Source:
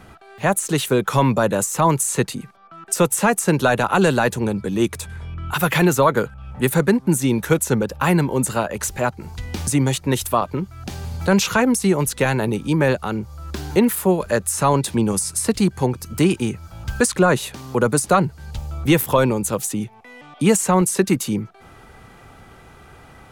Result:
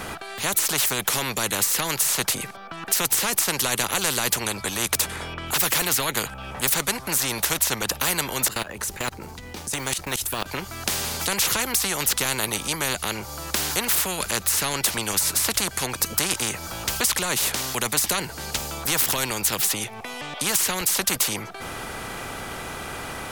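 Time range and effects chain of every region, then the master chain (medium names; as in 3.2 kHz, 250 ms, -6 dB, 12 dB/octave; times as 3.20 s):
8.48–10.46 s: companding laws mixed up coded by mu + treble shelf 2 kHz -5 dB + level held to a coarse grid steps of 22 dB
whole clip: treble shelf 4.7 kHz +5.5 dB; spectrum-flattening compressor 4:1; trim -1 dB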